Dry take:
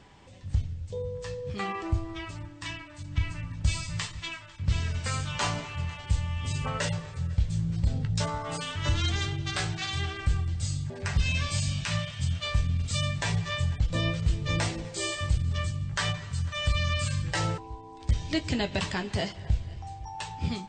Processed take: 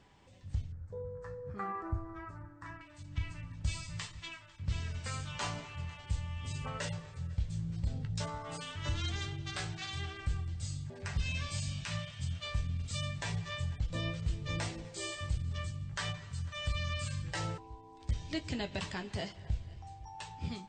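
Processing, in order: 0.72–2.81 s: resonant high shelf 2.1 kHz -13 dB, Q 3; trim -8.5 dB

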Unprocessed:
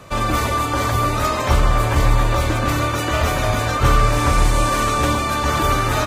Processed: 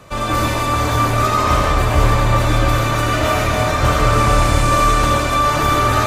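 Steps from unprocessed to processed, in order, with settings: algorithmic reverb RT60 1.8 s, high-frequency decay 0.75×, pre-delay 40 ms, DRR -2.5 dB; trim -1.5 dB

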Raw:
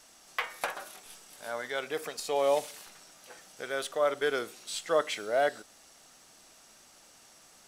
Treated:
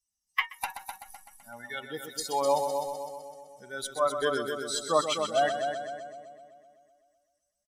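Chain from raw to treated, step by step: expander on every frequency bin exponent 2; comb 1 ms, depth 48%; multi-head delay 127 ms, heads first and second, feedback 56%, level -8.5 dB; spectral noise reduction 12 dB; trim +6 dB

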